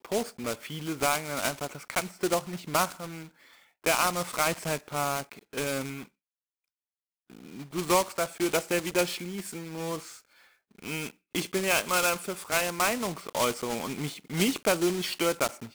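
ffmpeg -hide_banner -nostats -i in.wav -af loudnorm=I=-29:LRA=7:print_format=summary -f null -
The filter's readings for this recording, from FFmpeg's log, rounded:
Input Integrated:    -29.1 LUFS
Input True Peak:     -10.1 dBTP
Input LRA:             3.2 LU
Input Threshold:     -39.6 LUFS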